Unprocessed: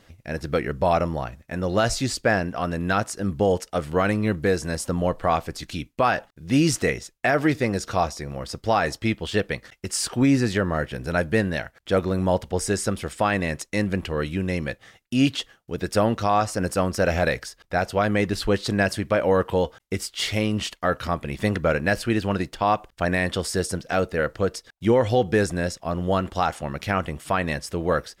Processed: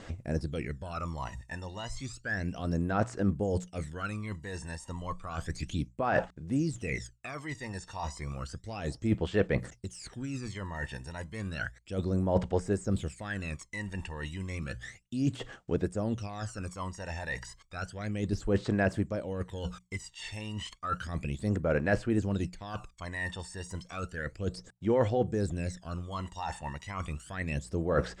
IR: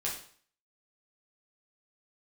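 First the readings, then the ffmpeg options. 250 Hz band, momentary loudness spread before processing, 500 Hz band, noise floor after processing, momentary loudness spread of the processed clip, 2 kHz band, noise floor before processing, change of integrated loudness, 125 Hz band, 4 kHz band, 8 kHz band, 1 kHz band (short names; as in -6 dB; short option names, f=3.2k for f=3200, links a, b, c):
-9.0 dB, 7 LU, -11.0 dB, -59 dBFS, 12 LU, -10.5 dB, -62 dBFS, -10.0 dB, -6.5 dB, -14.0 dB, -14.0 dB, -13.0 dB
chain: -filter_complex "[0:a]lowpass=f=7.8k:t=q:w=3.5,bandreject=f=60:t=h:w=6,bandreject=f=120:t=h:w=6,bandreject=f=180:t=h:w=6,areverse,acompressor=threshold=-32dB:ratio=12,areverse,aphaser=in_gain=1:out_gain=1:delay=1.1:decay=0.77:speed=0.32:type=sinusoidal,acrossover=split=2800[a][b];[b]acompressor=threshold=-44dB:ratio=4:attack=1:release=60[c];[a][c]amix=inputs=2:normalize=0,volume=-3dB"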